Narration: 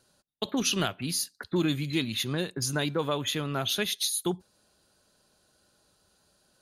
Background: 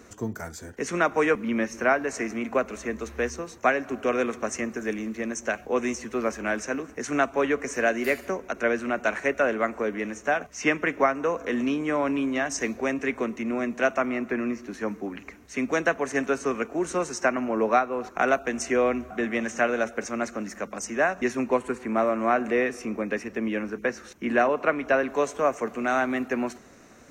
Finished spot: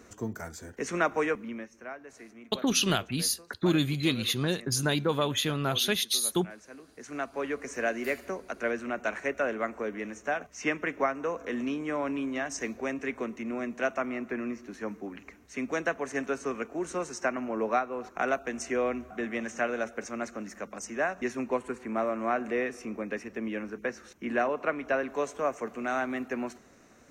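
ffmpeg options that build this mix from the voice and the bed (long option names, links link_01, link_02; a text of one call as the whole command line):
ffmpeg -i stem1.wav -i stem2.wav -filter_complex "[0:a]adelay=2100,volume=1.5dB[link_01];[1:a]volume=10dB,afade=type=out:start_time=1.07:duration=0.63:silence=0.158489,afade=type=in:start_time=6.7:duration=1.15:silence=0.211349[link_02];[link_01][link_02]amix=inputs=2:normalize=0" out.wav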